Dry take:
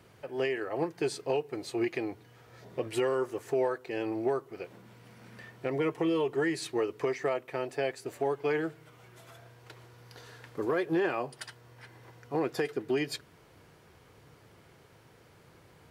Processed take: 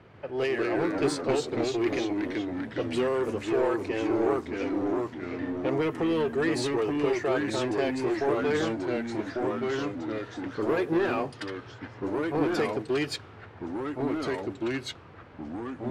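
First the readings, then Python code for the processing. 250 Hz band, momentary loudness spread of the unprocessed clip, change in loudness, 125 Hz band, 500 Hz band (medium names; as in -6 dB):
+7.5 dB, 16 LU, +3.5 dB, +6.0 dB, +4.0 dB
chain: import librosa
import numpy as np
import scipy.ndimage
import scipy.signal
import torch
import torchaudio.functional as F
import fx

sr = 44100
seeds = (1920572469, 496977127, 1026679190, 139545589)

y = fx.env_lowpass(x, sr, base_hz=2500.0, full_db=-25.5)
y = 10.0 ** (-26.5 / 20.0) * np.tanh(y / 10.0 ** (-26.5 / 20.0))
y = fx.echo_pitch(y, sr, ms=141, semitones=-2, count=3, db_per_echo=-3.0)
y = F.gain(torch.from_numpy(y), 5.0).numpy()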